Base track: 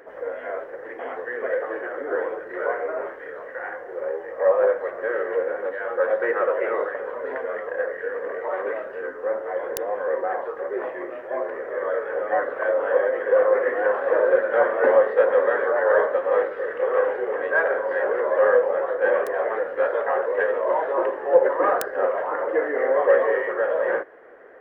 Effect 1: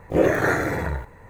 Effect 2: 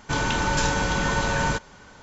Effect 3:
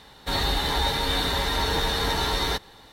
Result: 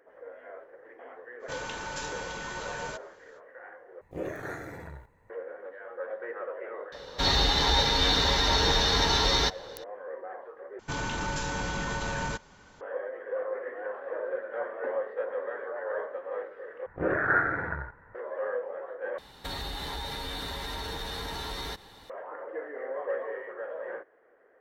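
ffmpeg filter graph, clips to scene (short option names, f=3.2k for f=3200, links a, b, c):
-filter_complex "[2:a]asplit=2[a][b];[1:a]asplit=2[c][d];[3:a]asplit=2[e][f];[0:a]volume=-15dB[g];[a]lowshelf=f=390:g=-9.5[h];[e]highshelf=f=7.5k:t=q:w=3:g=-10[i];[b]alimiter=limit=-16dB:level=0:latency=1:release=18[j];[d]lowpass=f=1.5k:t=q:w=5.7[k];[f]acompressor=threshold=-30dB:ratio=6:attack=3.2:release=140:knee=1:detection=peak[l];[g]asplit=5[m][n][o][p][q];[m]atrim=end=4.014[r];[c]atrim=end=1.29,asetpts=PTS-STARTPTS,volume=-17dB[s];[n]atrim=start=5.296:end=10.794[t];[j]atrim=end=2.02,asetpts=PTS-STARTPTS,volume=-7dB[u];[o]atrim=start=12.806:end=16.864[v];[k]atrim=end=1.29,asetpts=PTS-STARTPTS,volume=-11.5dB[w];[p]atrim=start=18.146:end=19.184[x];[l]atrim=end=2.92,asetpts=PTS-STARTPTS,volume=-2.5dB[y];[q]atrim=start=22.096[z];[h]atrim=end=2.02,asetpts=PTS-STARTPTS,volume=-11.5dB,afade=t=in:d=0.05,afade=t=out:st=1.97:d=0.05,adelay=1390[aa];[i]atrim=end=2.92,asetpts=PTS-STARTPTS,volume=-0.5dB,afade=t=in:d=0.004:c=hsin,afade=t=out:st=2.916:d=0.004:c=hsin,adelay=6920[ab];[r][s]acrossfade=d=0.004:c1=hsin:c2=hsin[ac];[ac][t]acrossfade=d=0.004:c1=hsin:c2=hsin[ad];[ad][u]acrossfade=d=0.004:c1=hsin:c2=hsin[ae];[ae][v]acrossfade=d=0.004:c1=hsin:c2=hsin[af];[af][w]acrossfade=d=0.004:c1=hsin:c2=hsin[ag];[ag][x]acrossfade=d=0.004:c1=hsin:c2=hsin[ah];[ah][y]acrossfade=d=0.004:c1=hsin:c2=hsin[ai];[ai][z]acrossfade=d=0.004:c1=hsin:c2=hsin[aj];[aj][aa][ab]amix=inputs=3:normalize=0"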